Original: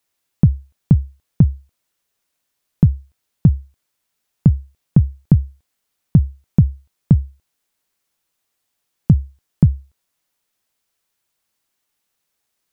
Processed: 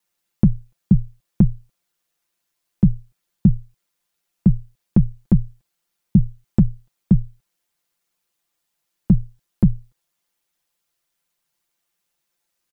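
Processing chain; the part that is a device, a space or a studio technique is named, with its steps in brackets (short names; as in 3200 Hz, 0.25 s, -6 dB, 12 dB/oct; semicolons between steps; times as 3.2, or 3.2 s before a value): ring-modulated robot voice (ring modulator 50 Hz; comb 5.8 ms, depth 76%); gain -1 dB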